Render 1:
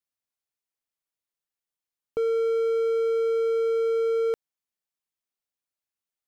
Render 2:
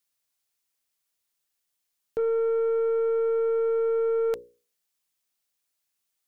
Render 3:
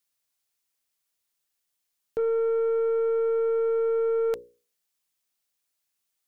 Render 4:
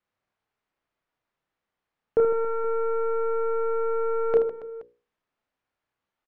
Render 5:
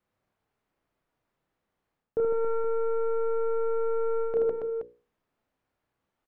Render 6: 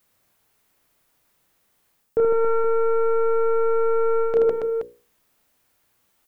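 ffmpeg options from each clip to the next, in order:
ffmpeg -i in.wav -af "highshelf=frequency=2500:gain=7.5,bandreject=frequency=60:width_type=h:width=6,bandreject=frequency=120:width_type=h:width=6,bandreject=frequency=180:width_type=h:width=6,bandreject=frequency=240:width_type=h:width=6,bandreject=frequency=300:width_type=h:width=6,bandreject=frequency=360:width_type=h:width=6,bandreject=frequency=420:width_type=h:width=6,bandreject=frequency=480:width_type=h:width=6,bandreject=frequency=540:width_type=h:width=6,aeval=exprs='(tanh(22.4*val(0)+0.1)-tanh(0.1))/22.4':channel_layout=same,volume=5dB" out.wav
ffmpeg -i in.wav -af anull out.wav
ffmpeg -i in.wav -filter_complex "[0:a]lowpass=1500,asplit=2[link_01][link_02];[link_02]aecho=0:1:30|78|154.8|277.7|474.3:0.631|0.398|0.251|0.158|0.1[link_03];[link_01][link_03]amix=inputs=2:normalize=0,volume=7.5dB" out.wav
ffmpeg -i in.wav -af "tiltshelf=frequency=770:gain=4.5,areverse,acompressor=threshold=-27dB:ratio=16,areverse,volume=4dB" out.wav
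ffmpeg -i in.wav -af "crystalizer=i=5.5:c=0,volume=6.5dB" out.wav

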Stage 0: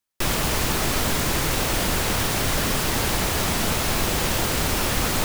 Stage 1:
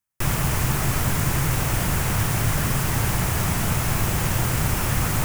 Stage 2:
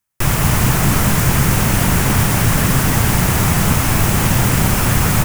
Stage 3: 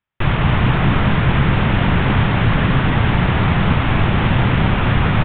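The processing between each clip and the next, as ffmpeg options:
ffmpeg -i in.wav -af "equalizer=frequency=125:width_type=o:width=1:gain=10,equalizer=frequency=250:width_type=o:width=1:gain=-4,equalizer=frequency=500:width_type=o:width=1:gain=-5,equalizer=frequency=4000:width_type=o:width=1:gain=-9" out.wav
ffmpeg -i in.wav -filter_complex "[0:a]asplit=5[link_01][link_02][link_03][link_04][link_05];[link_02]adelay=214,afreqshift=68,volume=-7dB[link_06];[link_03]adelay=428,afreqshift=136,volume=-16.1dB[link_07];[link_04]adelay=642,afreqshift=204,volume=-25.2dB[link_08];[link_05]adelay=856,afreqshift=272,volume=-34.4dB[link_09];[link_01][link_06][link_07][link_08][link_09]amix=inputs=5:normalize=0,volume=7dB" out.wav
ffmpeg -i in.wav -af "aresample=8000,aresample=44100" out.wav

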